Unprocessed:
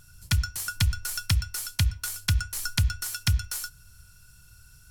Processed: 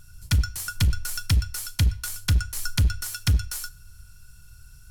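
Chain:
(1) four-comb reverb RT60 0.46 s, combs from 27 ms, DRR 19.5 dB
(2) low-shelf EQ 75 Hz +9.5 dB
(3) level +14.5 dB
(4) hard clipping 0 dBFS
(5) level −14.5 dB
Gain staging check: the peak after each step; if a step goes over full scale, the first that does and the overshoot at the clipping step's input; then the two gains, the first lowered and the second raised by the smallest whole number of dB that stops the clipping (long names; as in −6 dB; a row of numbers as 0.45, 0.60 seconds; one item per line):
−7.5, −7.0, +7.5, 0.0, −14.5 dBFS
step 3, 7.5 dB
step 3 +6.5 dB, step 5 −6.5 dB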